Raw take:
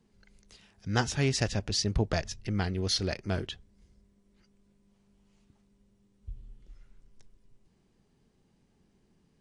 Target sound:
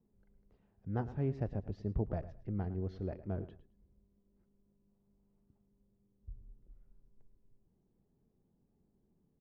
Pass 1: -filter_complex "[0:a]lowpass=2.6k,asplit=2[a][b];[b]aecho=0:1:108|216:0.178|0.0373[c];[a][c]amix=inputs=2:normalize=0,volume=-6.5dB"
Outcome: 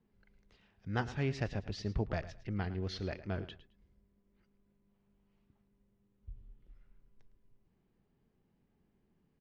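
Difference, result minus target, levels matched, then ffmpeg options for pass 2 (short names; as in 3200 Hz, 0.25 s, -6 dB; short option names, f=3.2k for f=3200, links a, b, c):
2000 Hz band +13.5 dB
-filter_complex "[0:a]lowpass=720,asplit=2[a][b];[b]aecho=0:1:108|216:0.178|0.0373[c];[a][c]amix=inputs=2:normalize=0,volume=-6.5dB"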